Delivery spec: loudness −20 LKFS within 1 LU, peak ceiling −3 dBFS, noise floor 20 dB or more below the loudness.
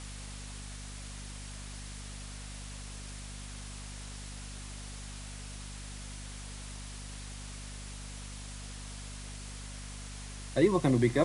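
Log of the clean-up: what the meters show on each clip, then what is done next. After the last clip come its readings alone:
mains hum 50 Hz; hum harmonics up to 250 Hz; level of the hum −42 dBFS; background noise floor −44 dBFS; target noise floor −58 dBFS; integrated loudness −38.0 LKFS; sample peak −13.0 dBFS; target loudness −20.0 LKFS
→ hum removal 50 Hz, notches 5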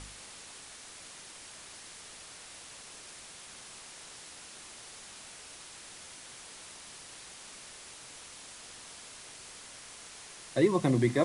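mains hum none found; background noise floor −49 dBFS; target noise floor −59 dBFS
→ broadband denoise 10 dB, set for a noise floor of −49 dBFS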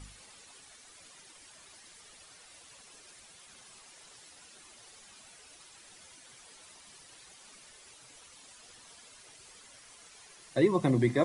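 background noise floor −56 dBFS; integrated loudness −27.5 LKFS; sample peak −13.5 dBFS; target loudness −20.0 LKFS
→ level +7.5 dB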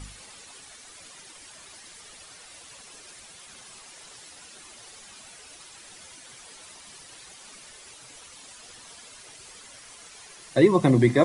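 integrated loudness −20.0 LKFS; sample peak −6.0 dBFS; background noise floor −48 dBFS

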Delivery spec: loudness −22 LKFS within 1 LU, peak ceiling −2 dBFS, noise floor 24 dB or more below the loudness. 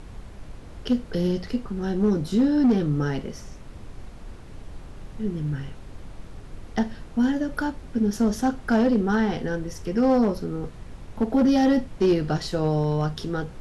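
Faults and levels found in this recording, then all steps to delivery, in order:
share of clipped samples 0.9%; peaks flattened at −14.0 dBFS; background noise floor −42 dBFS; target noise floor −48 dBFS; integrated loudness −24.0 LKFS; sample peak −14.0 dBFS; target loudness −22.0 LKFS
→ clipped peaks rebuilt −14 dBFS
noise reduction from a noise print 6 dB
level +2 dB

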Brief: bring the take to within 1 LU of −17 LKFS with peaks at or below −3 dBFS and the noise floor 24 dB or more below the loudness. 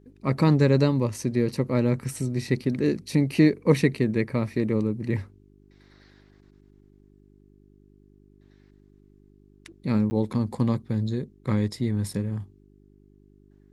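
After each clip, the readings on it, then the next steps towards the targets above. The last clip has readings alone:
number of dropouts 1; longest dropout 10 ms; mains hum 50 Hz; hum harmonics up to 400 Hz; level of the hum −45 dBFS; integrated loudness −25.0 LKFS; sample peak −6.0 dBFS; target loudness −17.0 LKFS
→ repair the gap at 0:10.10, 10 ms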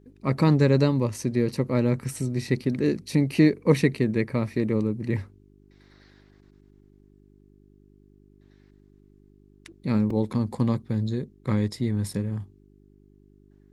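number of dropouts 0; mains hum 50 Hz; hum harmonics up to 400 Hz; level of the hum −45 dBFS
→ hum removal 50 Hz, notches 8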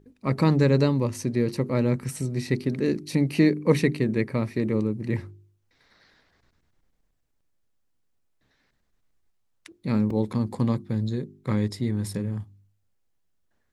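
mains hum none found; integrated loudness −25.5 LKFS; sample peak −6.5 dBFS; target loudness −17.0 LKFS
→ level +8.5 dB
brickwall limiter −3 dBFS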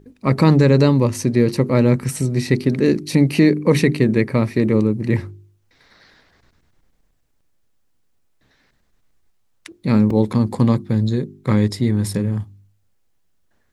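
integrated loudness −17.5 LKFS; sample peak −3.0 dBFS; background noise floor −62 dBFS

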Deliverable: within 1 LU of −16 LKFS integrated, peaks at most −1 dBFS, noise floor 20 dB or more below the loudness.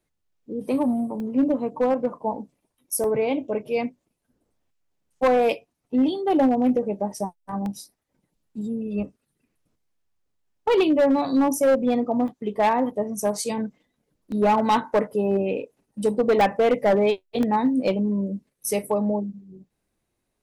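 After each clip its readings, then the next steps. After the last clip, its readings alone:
share of clipped samples 1.4%; peaks flattened at −14.0 dBFS; number of dropouts 7; longest dropout 1.2 ms; integrated loudness −23.5 LKFS; sample peak −14.0 dBFS; target loudness −16.0 LKFS
→ clipped peaks rebuilt −14 dBFS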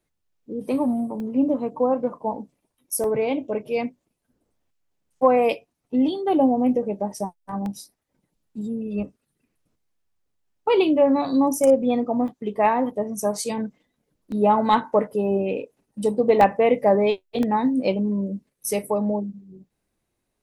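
share of clipped samples 0.0%; number of dropouts 7; longest dropout 1.2 ms
→ repair the gap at 0:01.20/0:03.04/0:07.66/0:12.28/0:14.32/0:16.41/0:17.43, 1.2 ms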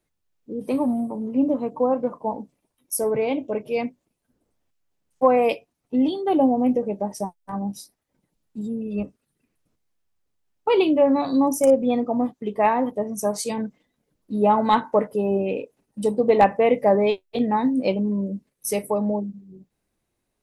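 number of dropouts 0; integrated loudness −22.5 LKFS; sample peak −5.0 dBFS; target loudness −16.0 LKFS
→ level +6.5 dB
brickwall limiter −1 dBFS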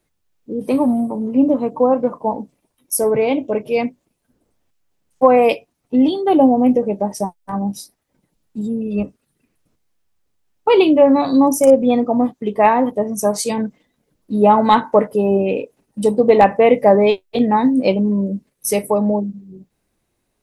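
integrated loudness −16.5 LKFS; sample peak −1.0 dBFS; background noise floor −71 dBFS

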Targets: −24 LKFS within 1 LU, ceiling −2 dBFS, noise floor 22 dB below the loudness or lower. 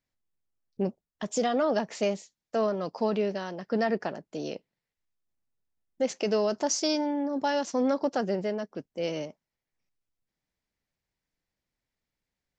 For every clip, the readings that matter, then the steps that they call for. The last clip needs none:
integrated loudness −29.5 LKFS; sample peak −15.0 dBFS; target loudness −24.0 LKFS
→ level +5.5 dB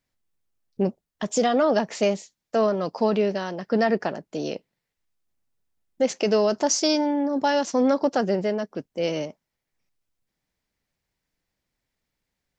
integrated loudness −24.0 LKFS; sample peak −9.5 dBFS; background noise floor −83 dBFS

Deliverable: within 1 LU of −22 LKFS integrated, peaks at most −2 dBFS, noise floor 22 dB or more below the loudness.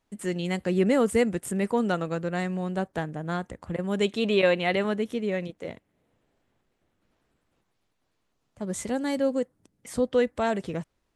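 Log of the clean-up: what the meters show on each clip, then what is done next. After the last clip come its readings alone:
integrated loudness −27.5 LKFS; sample peak −11.0 dBFS; target loudness −22.0 LKFS
→ level +5.5 dB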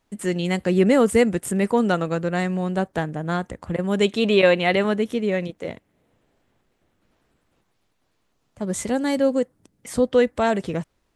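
integrated loudness −22.0 LKFS; sample peak −5.5 dBFS; background noise floor −70 dBFS

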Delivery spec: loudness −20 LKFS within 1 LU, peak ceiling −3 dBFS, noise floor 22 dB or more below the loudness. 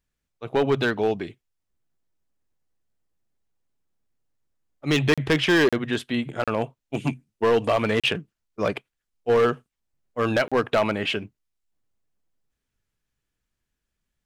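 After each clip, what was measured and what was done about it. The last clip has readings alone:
share of clipped samples 1.0%; peaks flattened at −14.0 dBFS; number of dropouts 5; longest dropout 36 ms; integrated loudness −24.0 LKFS; sample peak −14.0 dBFS; target loudness −20.0 LKFS
→ clipped peaks rebuilt −14 dBFS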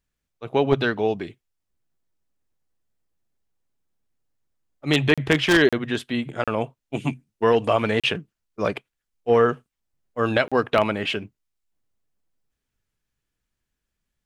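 share of clipped samples 0.0%; number of dropouts 5; longest dropout 36 ms
→ repair the gap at 0:05.14/0:05.69/0:06.44/0:08.00/0:10.48, 36 ms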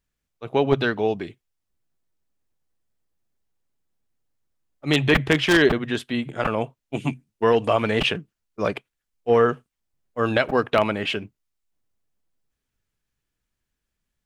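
number of dropouts 0; integrated loudness −22.5 LKFS; sample peak −3.0 dBFS; target loudness −20.0 LKFS
→ level +2.5 dB
brickwall limiter −3 dBFS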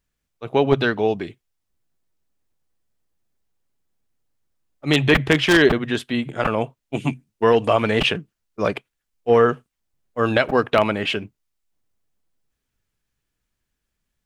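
integrated loudness −20.0 LKFS; sample peak −3.0 dBFS; background noise floor −79 dBFS

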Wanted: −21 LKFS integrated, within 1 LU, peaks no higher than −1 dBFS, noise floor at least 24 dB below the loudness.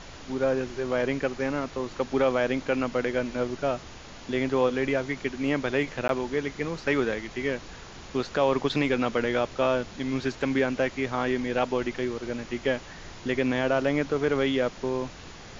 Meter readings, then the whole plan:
number of dropouts 1; longest dropout 12 ms; background noise floor −44 dBFS; target noise floor −52 dBFS; integrated loudness −27.5 LKFS; sample peak −11.0 dBFS; target loudness −21.0 LKFS
→ repair the gap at 0:06.08, 12 ms
noise reduction from a noise print 8 dB
level +6.5 dB

